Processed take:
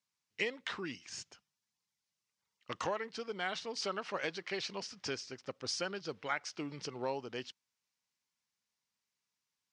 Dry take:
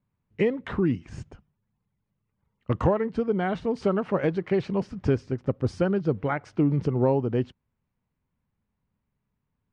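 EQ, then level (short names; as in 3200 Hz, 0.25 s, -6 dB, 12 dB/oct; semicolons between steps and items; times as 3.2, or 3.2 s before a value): band-pass 5500 Hz, Q 2; +13.0 dB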